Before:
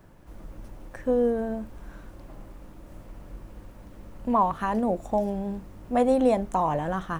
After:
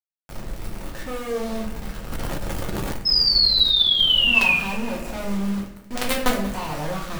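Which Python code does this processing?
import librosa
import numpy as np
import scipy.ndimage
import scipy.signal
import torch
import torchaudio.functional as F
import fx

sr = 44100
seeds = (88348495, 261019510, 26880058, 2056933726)

p1 = fx.highpass(x, sr, hz=57.0, slope=6, at=(5.34, 5.95))
p2 = fx.quant_companded(p1, sr, bits=2)
p3 = fx.spec_paint(p2, sr, seeds[0], shape='fall', start_s=3.05, length_s=1.51, low_hz=2400.0, high_hz=5200.0, level_db=-14.0)
p4 = p3 + fx.echo_feedback(p3, sr, ms=186, feedback_pct=43, wet_db=-17.0, dry=0)
p5 = fx.room_shoebox(p4, sr, seeds[1], volume_m3=71.0, walls='mixed', distance_m=0.88)
p6 = fx.env_flatten(p5, sr, amount_pct=100, at=(2.1, 2.99))
y = p6 * librosa.db_to_amplitude(-7.5)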